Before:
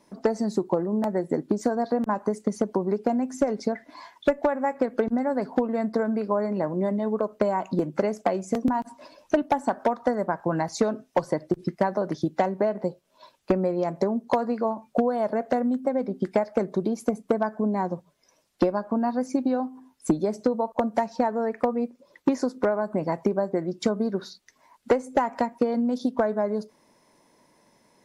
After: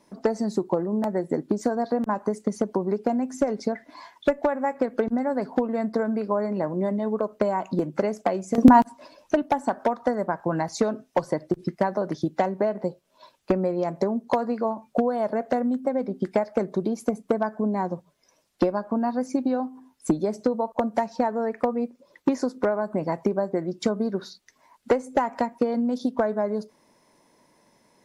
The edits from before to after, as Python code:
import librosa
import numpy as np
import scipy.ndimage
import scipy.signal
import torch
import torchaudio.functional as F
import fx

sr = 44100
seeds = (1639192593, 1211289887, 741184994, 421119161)

y = fx.edit(x, sr, fx.clip_gain(start_s=8.58, length_s=0.26, db=11.5), tone=tone)